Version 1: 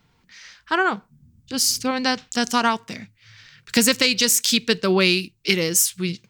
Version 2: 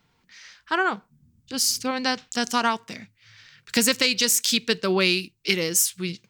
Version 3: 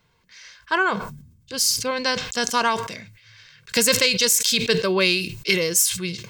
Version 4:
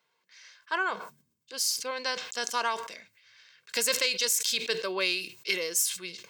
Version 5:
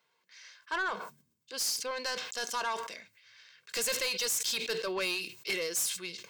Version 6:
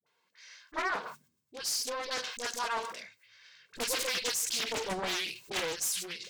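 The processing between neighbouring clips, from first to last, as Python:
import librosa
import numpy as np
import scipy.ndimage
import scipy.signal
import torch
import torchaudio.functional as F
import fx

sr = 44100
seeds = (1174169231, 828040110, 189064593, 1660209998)

y1 = fx.low_shelf(x, sr, hz=170.0, db=-5.5)
y1 = y1 * 10.0 ** (-2.5 / 20.0)
y2 = y1 + 0.51 * np.pad(y1, (int(1.9 * sr / 1000.0), 0))[:len(y1)]
y2 = fx.sustainer(y2, sr, db_per_s=74.0)
y2 = y2 * 10.0 ** (1.0 / 20.0)
y3 = scipy.signal.sosfilt(scipy.signal.butter(2, 420.0, 'highpass', fs=sr, output='sos'), y2)
y3 = y3 * 10.0 ** (-8.0 / 20.0)
y4 = 10.0 ** (-26.5 / 20.0) * np.tanh(y3 / 10.0 ** (-26.5 / 20.0))
y5 = fx.dispersion(y4, sr, late='highs', ms=65.0, hz=550.0)
y5 = fx.doppler_dist(y5, sr, depth_ms=0.75)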